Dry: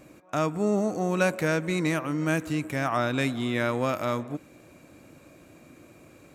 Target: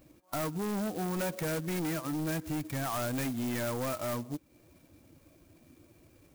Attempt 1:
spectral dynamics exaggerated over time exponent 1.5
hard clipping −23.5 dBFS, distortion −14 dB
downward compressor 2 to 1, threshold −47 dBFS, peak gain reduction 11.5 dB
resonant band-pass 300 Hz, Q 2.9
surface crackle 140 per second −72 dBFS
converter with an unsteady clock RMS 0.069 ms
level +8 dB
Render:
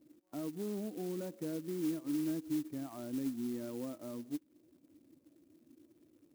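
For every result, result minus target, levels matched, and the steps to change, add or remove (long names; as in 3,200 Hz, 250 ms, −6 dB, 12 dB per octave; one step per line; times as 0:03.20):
hard clipping: distortion −7 dB; 250 Hz band +3.5 dB
change: hard clipping −30 dBFS, distortion −7 dB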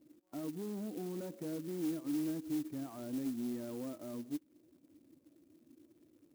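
250 Hz band +3.5 dB
remove: resonant band-pass 300 Hz, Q 2.9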